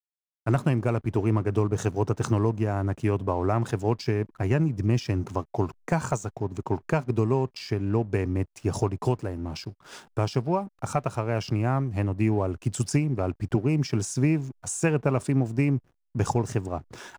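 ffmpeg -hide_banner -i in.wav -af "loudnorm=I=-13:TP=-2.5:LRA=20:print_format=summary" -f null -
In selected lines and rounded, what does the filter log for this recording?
Input Integrated:    -27.1 LUFS
Input True Peak:     -11.3 dBTP
Input LRA:             2.4 LU
Input Threshold:     -37.2 LUFS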